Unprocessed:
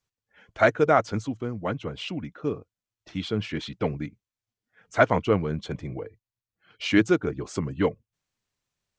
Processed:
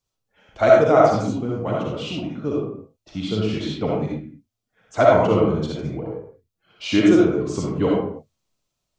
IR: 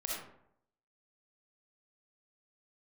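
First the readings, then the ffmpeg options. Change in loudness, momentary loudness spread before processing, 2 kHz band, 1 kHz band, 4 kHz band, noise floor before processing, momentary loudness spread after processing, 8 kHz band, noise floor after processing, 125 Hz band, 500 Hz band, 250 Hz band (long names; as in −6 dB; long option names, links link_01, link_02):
+6.5 dB, 14 LU, −0.5 dB, +5.5 dB, +4.0 dB, below −85 dBFS, 18 LU, can't be measured, −81 dBFS, +5.0 dB, +8.0 dB, +7.0 dB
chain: -filter_complex "[0:a]equalizer=frequency=1800:width_type=o:width=0.8:gain=-9.5[link_01];[1:a]atrim=start_sample=2205,afade=type=out:start_time=0.39:duration=0.01,atrim=end_sample=17640[link_02];[link_01][link_02]afir=irnorm=-1:irlink=0,volume=4.5dB"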